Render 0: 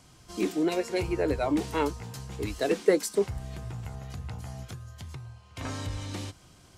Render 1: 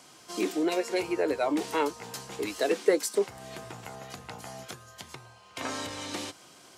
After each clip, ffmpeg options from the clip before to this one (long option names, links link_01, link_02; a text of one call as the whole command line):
ffmpeg -i in.wav -filter_complex "[0:a]highpass=320,asplit=2[link_01][link_02];[link_02]acompressor=threshold=-36dB:ratio=6,volume=2dB[link_03];[link_01][link_03]amix=inputs=2:normalize=0,volume=-1.5dB" out.wav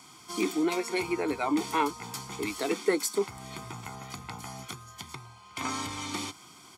ffmpeg -i in.wav -af "aecho=1:1:0.9:0.73" out.wav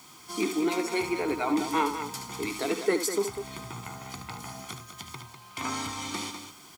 ffmpeg -i in.wav -af "acrusher=bits=8:mix=0:aa=0.000001,aecho=1:1:72.89|198.3:0.355|0.355" out.wav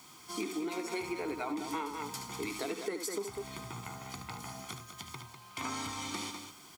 ffmpeg -i in.wav -af "acompressor=threshold=-29dB:ratio=12,volume=-3.5dB" out.wav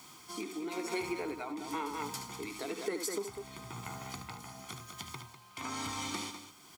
ffmpeg -i in.wav -af "tremolo=f=1:d=0.48,volume=1.5dB" out.wav